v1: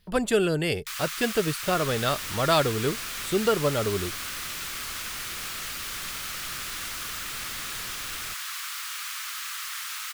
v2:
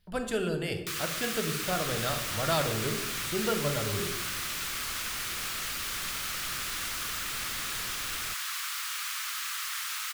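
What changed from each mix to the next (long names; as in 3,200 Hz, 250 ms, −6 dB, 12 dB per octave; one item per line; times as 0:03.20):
speech −10.5 dB
reverb: on, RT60 0.90 s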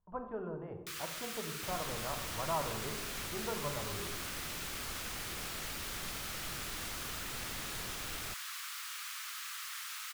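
speech: add transistor ladder low-pass 1,100 Hz, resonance 70%
first sound −8.5 dB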